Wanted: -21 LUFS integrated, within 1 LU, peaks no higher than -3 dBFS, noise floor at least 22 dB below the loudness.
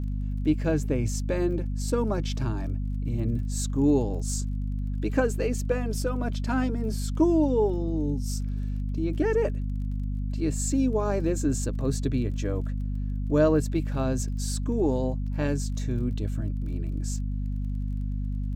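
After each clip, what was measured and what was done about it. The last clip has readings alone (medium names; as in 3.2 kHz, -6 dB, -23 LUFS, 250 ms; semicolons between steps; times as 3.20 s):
tick rate 22 per s; hum 50 Hz; highest harmonic 250 Hz; hum level -27 dBFS; loudness -28.0 LUFS; peak level -9.5 dBFS; loudness target -21.0 LUFS
-> de-click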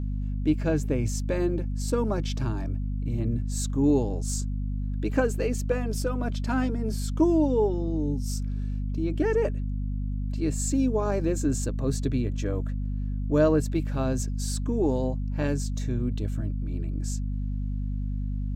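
tick rate 0 per s; hum 50 Hz; highest harmonic 250 Hz; hum level -27 dBFS
-> hum notches 50/100/150/200/250 Hz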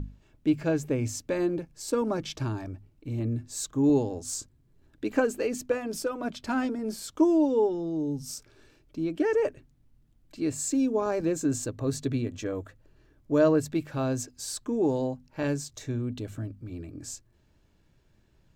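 hum not found; loudness -29.0 LUFS; peak level -12.0 dBFS; loudness target -21.0 LUFS
-> trim +8 dB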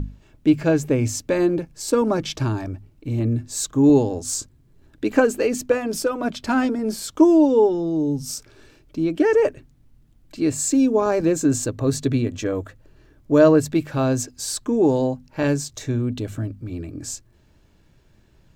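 loudness -21.0 LUFS; peak level -4.0 dBFS; noise floor -56 dBFS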